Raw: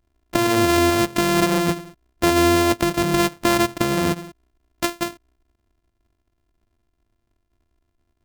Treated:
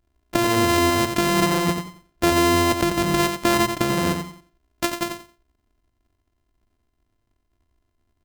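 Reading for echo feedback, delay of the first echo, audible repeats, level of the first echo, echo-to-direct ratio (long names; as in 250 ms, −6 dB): 21%, 89 ms, 3, −7.0 dB, −7.0 dB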